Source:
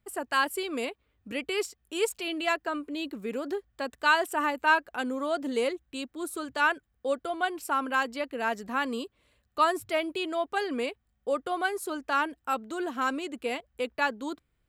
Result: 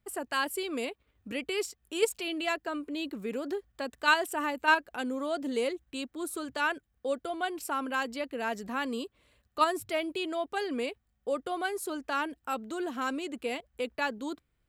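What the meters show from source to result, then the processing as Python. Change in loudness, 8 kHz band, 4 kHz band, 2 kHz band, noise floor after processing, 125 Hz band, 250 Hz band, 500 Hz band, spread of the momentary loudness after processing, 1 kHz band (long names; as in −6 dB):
−2.5 dB, 0.0 dB, −1.0 dB, −3.0 dB, −77 dBFS, can't be measured, −1.0 dB, −2.0 dB, 10 LU, −3.5 dB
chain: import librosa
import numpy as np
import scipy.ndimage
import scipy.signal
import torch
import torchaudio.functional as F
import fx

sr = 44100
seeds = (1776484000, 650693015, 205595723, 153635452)

p1 = fx.dynamic_eq(x, sr, hz=1200.0, q=0.88, threshold_db=-39.0, ratio=4.0, max_db=-4)
p2 = fx.level_steps(p1, sr, step_db=24)
p3 = p1 + (p2 * 10.0 ** (-2.0 / 20.0))
y = p3 * 10.0 ** (-2.0 / 20.0)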